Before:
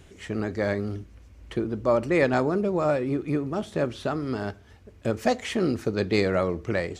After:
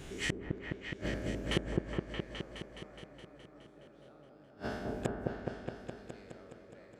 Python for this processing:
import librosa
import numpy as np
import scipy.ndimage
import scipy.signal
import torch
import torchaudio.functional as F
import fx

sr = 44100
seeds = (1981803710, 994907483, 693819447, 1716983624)

p1 = fx.spec_trails(x, sr, decay_s=1.14)
p2 = fx.peak_eq(p1, sr, hz=83.0, db=-12.0, octaves=0.31)
p3 = fx.gate_flip(p2, sr, shuts_db=-20.0, range_db=-40)
p4 = p3 + fx.echo_opening(p3, sr, ms=209, hz=750, octaves=1, feedback_pct=70, wet_db=0, dry=0)
y = F.gain(torch.from_numpy(p4), 3.0).numpy()